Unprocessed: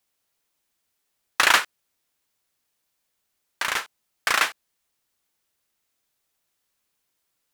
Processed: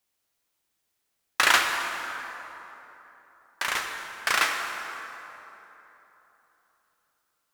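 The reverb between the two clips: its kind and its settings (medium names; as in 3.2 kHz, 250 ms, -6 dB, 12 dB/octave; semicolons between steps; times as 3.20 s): plate-style reverb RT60 3.5 s, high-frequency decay 0.55×, DRR 2.5 dB; trim -3 dB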